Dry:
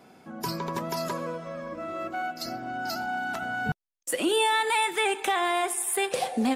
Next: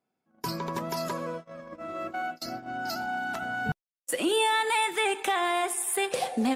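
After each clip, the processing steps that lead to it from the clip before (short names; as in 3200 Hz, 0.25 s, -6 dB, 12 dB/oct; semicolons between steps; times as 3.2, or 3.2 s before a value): gate -35 dBFS, range -28 dB; gain -1 dB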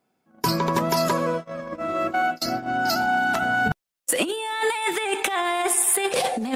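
negative-ratio compressor -29 dBFS, ratio -0.5; gain +8 dB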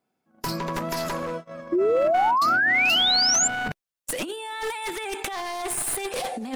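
one-sided fold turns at -19 dBFS; painted sound rise, 1.72–3.48, 330–7500 Hz -15 dBFS; gain -5.5 dB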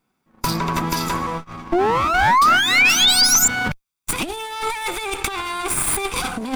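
minimum comb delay 0.85 ms; gain +7.5 dB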